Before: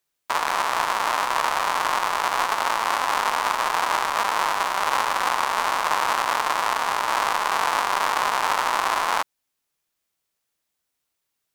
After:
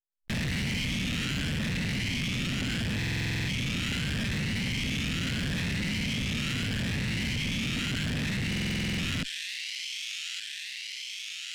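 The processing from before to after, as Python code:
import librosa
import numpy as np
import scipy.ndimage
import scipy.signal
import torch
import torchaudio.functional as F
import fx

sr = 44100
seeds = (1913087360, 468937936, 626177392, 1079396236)

y = fx.spec_ripple(x, sr, per_octave=0.85, drift_hz=0.76, depth_db=17)
y = fx.fuzz(y, sr, gain_db=32.0, gate_db=-37.0)
y = scipy.signal.sosfilt(scipy.signal.ellip(3, 1.0, 40, [260.0, 2000.0], 'bandstop', fs=sr, output='sos'), y)
y = fx.peak_eq(y, sr, hz=140.0, db=10.5, octaves=2.5)
y = fx.rider(y, sr, range_db=10, speed_s=2.0)
y = fx.spacing_loss(y, sr, db_at_10k=22)
y = fx.echo_wet_highpass(y, sr, ms=1171, feedback_pct=41, hz=3500.0, wet_db=-17)
y = 10.0 ** (-28.5 / 20.0) * np.tanh(y / 10.0 ** (-28.5 / 20.0))
y = fx.buffer_glitch(y, sr, at_s=(2.97, 8.48), block=2048, repeats=10)
y = fx.env_flatten(y, sr, amount_pct=70)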